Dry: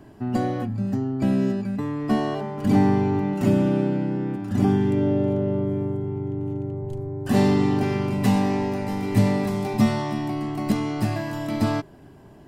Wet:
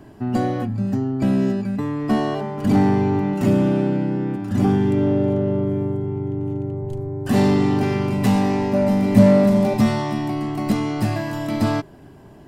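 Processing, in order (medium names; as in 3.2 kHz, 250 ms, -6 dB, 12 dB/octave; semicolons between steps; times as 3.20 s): 8.73–9.74 s: small resonant body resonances 220/580 Hz, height 15 dB, ringing for 95 ms; in parallel at -3 dB: hard clipper -17.5 dBFS, distortion -9 dB; on the sum: trim -1.5 dB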